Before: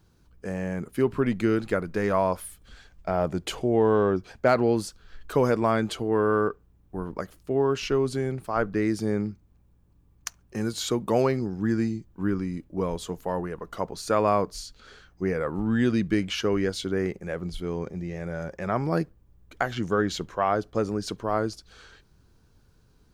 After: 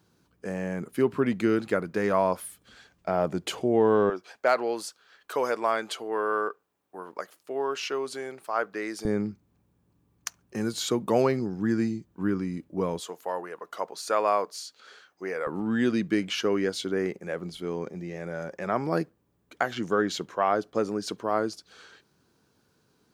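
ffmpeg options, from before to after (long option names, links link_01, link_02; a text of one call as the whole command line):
ffmpeg -i in.wav -af "asetnsamples=nb_out_samples=441:pad=0,asendcmd='4.1 highpass f 550;9.05 highpass f 130;13 highpass f 500;15.47 highpass f 200',highpass=150" out.wav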